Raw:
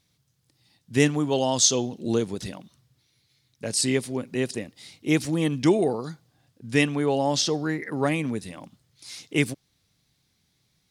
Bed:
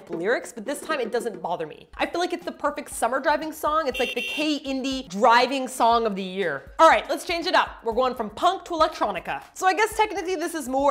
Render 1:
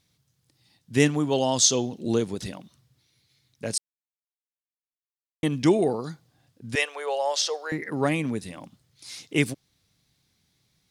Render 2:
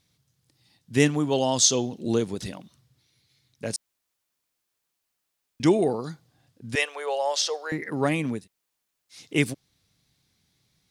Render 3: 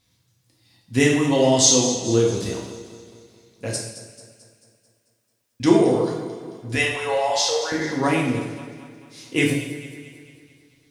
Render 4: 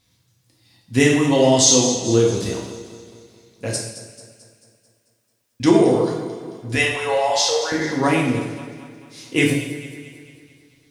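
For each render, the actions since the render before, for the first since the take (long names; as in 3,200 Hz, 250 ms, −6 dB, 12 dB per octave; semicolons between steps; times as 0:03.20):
0:03.78–0:05.43: silence; 0:06.75–0:07.72: elliptic high-pass filter 480 Hz, stop band 60 dB
0:03.76–0:05.60: fill with room tone; 0:08.40–0:09.17: fill with room tone, crossfade 0.16 s
on a send: delay that swaps between a low-pass and a high-pass 110 ms, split 2,000 Hz, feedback 73%, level −10.5 dB; on the sum: coupled-rooms reverb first 0.68 s, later 2.1 s, DRR −3 dB
level +2.5 dB; brickwall limiter −3 dBFS, peak gain reduction 3 dB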